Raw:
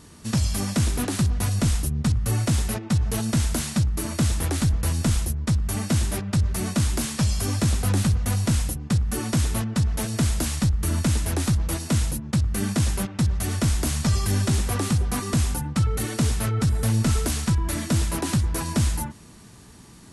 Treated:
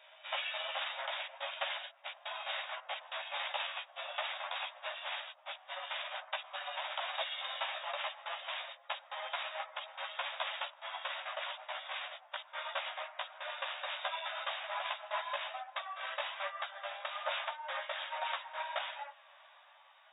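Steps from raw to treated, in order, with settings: pitch bend over the whole clip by -11 st ending unshifted; chorus voices 6, 1.2 Hz, delay 14 ms, depth 3.4 ms; brick-wall FIR band-pass 540–3800 Hz; trim +1 dB

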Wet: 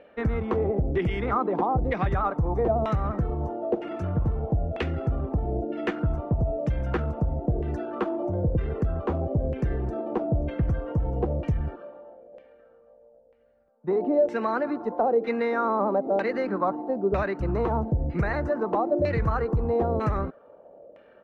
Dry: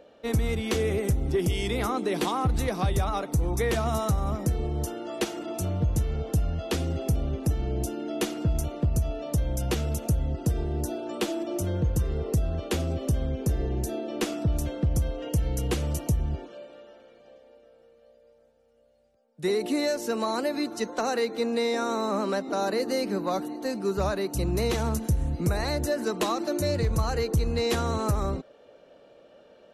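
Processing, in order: LFO low-pass saw down 0.75 Hz 540–2300 Hz; tempo 1.4×

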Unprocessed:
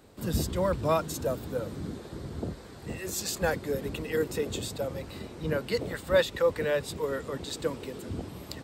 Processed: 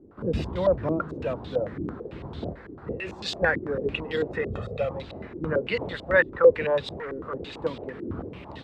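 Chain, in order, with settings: 4.41–4.91 s: comb 1.6 ms, depth 99%; 6.95–7.61 s: overload inside the chain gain 34 dB; step-sequenced low-pass 9 Hz 340–3600 Hz

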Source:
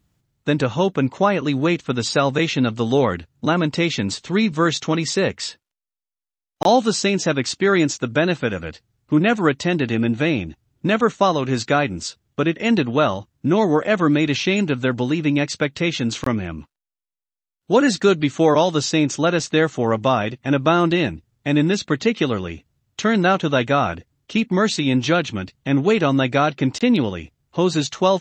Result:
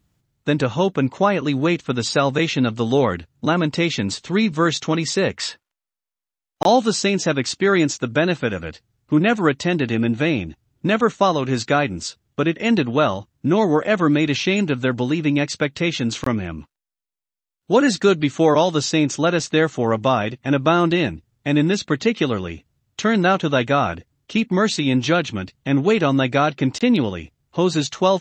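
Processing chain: 5.37–6.64 s: peaking EQ 1.2 kHz +8.5 dB -> +2 dB 2.4 oct

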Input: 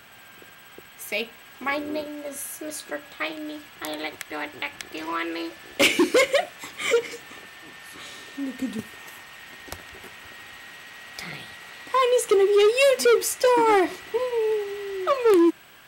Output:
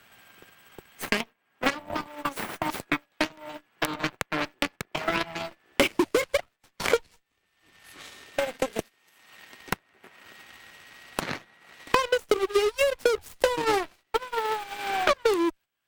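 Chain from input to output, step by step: gate -37 dBFS, range -10 dB; Chebyshev shaper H 3 -9 dB, 8 -25 dB, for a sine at -12 dBFS; transient shaper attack +8 dB, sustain -6 dB; three bands compressed up and down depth 100%; trim -3.5 dB

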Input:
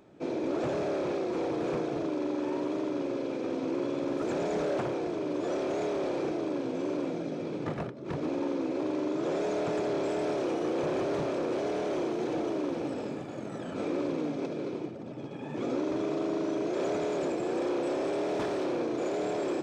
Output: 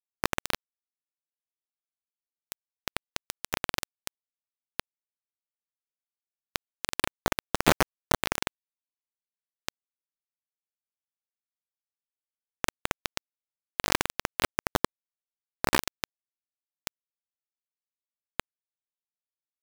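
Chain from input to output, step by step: gain riding within 3 dB 0.5 s; bit crusher 4-bit; trim +9 dB

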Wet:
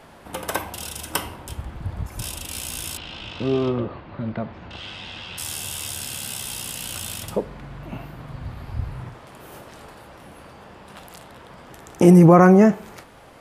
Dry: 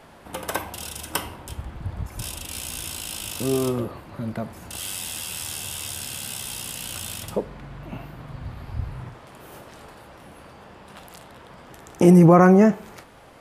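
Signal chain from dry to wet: 2.97–5.38 s: low-pass 3.8 kHz 24 dB/octave; trim +1.5 dB

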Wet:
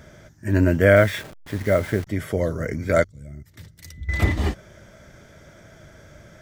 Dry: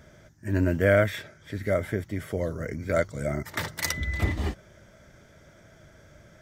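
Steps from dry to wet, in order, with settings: 0.96–2.07 s: send-on-delta sampling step -41.5 dBFS; 3.04–4.09 s: amplifier tone stack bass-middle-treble 10-0-1; trim +6 dB

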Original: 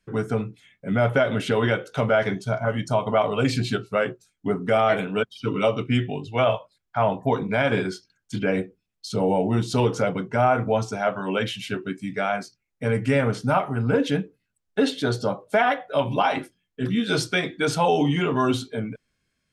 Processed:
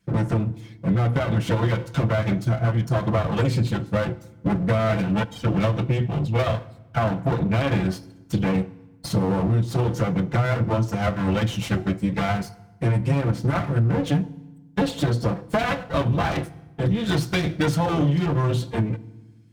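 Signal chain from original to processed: comb filter that takes the minimum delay 5.9 ms; high-pass 49 Hz; peaking EQ 110 Hz +15 dB 2.3 oct; compression, threshold -22 dBFS, peak gain reduction 13.5 dB; FDN reverb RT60 1.1 s, low-frequency decay 1.6×, high-frequency decay 0.8×, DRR 17 dB; trim +3.5 dB

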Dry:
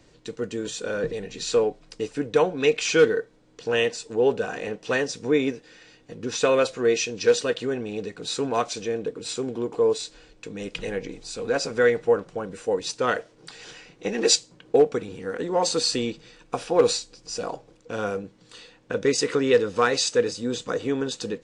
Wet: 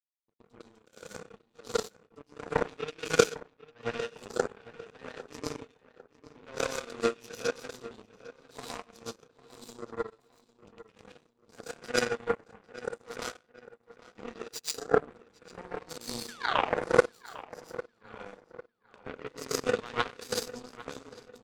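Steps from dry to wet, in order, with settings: high-pass 110 Hz 12 dB/octave; in parallel at -0.5 dB: compression, threshold -30 dBFS, peak gain reduction 17 dB; on the sum: painted sound fall, 16.25–16.64 s, 410–1800 Hz -18 dBFS; three bands offset in time lows, mids, highs 30/240 ms, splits 420/2500 Hz; one-sided clip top -9 dBFS; plate-style reverb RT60 0.63 s, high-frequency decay 0.6×, pre-delay 100 ms, DRR -5 dB; power-law waveshaper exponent 3; on a send: filtered feedback delay 801 ms, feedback 39%, low-pass 3.1 kHz, level -16.5 dB; on the sum: trim -1.5 dB

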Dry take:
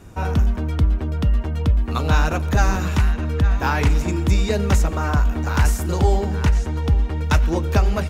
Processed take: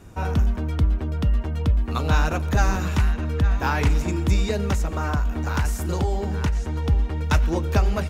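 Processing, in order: 4.45–6.73 s: compression, threshold -16 dBFS, peak gain reduction 6 dB; trim -2.5 dB

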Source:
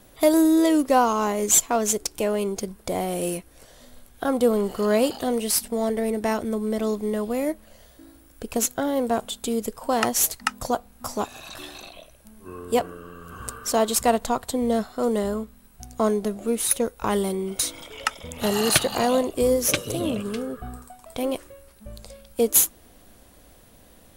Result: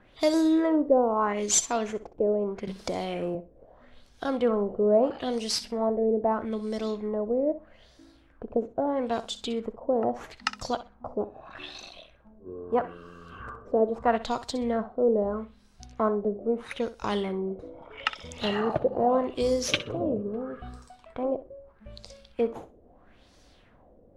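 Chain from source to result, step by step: LFO low-pass sine 0.78 Hz 480–5600 Hz; flutter echo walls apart 10.8 m, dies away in 0.26 s; 2.67–3.35 s: three bands compressed up and down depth 70%; trim -5.5 dB

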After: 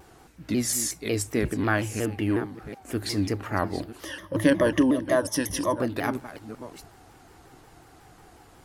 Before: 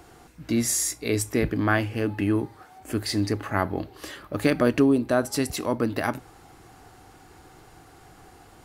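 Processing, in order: chunks repeated in reverse 686 ms, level -13 dB; 4.05–5.80 s: rippled EQ curve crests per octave 1.2, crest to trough 15 dB; vibrato with a chosen wave saw down 5.5 Hz, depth 160 cents; trim -2 dB

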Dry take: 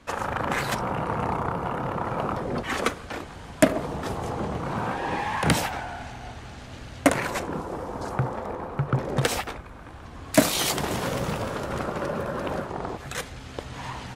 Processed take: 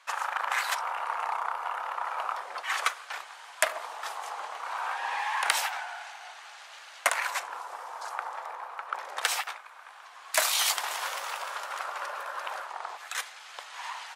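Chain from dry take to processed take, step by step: high-pass 840 Hz 24 dB/octave

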